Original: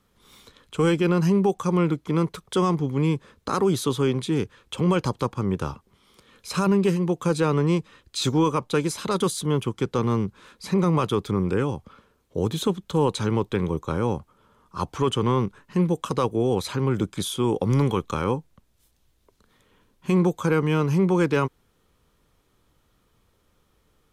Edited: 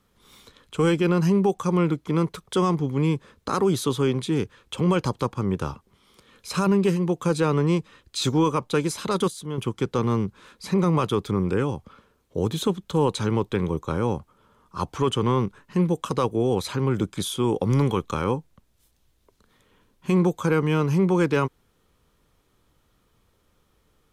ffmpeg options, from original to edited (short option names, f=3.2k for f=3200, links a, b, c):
-filter_complex "[0:a]asplit=3[a][b][c];[a]atrim=end=9.282[d];[b]atrim=start=9.278:end=9.582,asetpts=PTS-STARTPTS,volume=-8dB[e];[c]atrim=start=9.578[f];[d][e]acrossfade=d=0.004:c1=hsin:c2=hsin[g];[g][f]acrossfade=d=0.004:c1=hsin:c2=hsin"